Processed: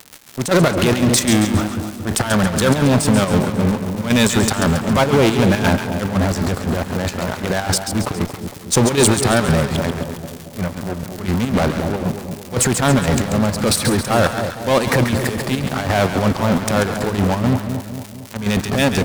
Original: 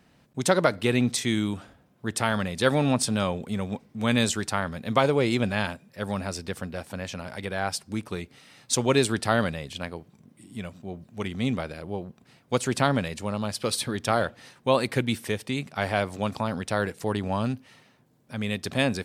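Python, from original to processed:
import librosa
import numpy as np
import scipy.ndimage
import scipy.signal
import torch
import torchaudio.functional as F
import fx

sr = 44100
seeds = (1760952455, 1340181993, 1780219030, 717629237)

p1 = fx.wiener(x, sr, points=15)
p2 = fx.high_shelf(p1, sr, hz=4700.0, db=8.5)
p3 = fx.transient(p2, sr, attack_db=-10, sustain_db=10)
p4 = fx.dmg_crackle(p3, sr, seeds[0], per_s=330.0, level_db=-37.0)
p5 = fx.fuzz(p4, sr, gain_db=35.0, gate_db=-40.0)
p6 = p4 + F.gain(torch.from_numpy(p5), -5.0).numpy()
p7 = fx.chopper(p6, sr, hz=3.9, depth_pct=60, duty_pct=65)
p8 = fx.echo_split(p7, sr, split_hz=890.0, low_ms=228, high_ms=137, feedback_pct=52, wet_db=-7.5)
y = F.gain(torch.from_numpy(p8), 2.0).numpy()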